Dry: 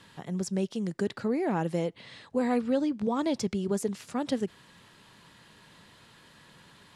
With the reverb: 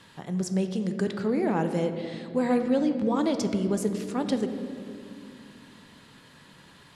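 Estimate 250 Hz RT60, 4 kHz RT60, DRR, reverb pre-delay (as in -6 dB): 3.9 s, 1.2 s, 7.0 dB, 3 ms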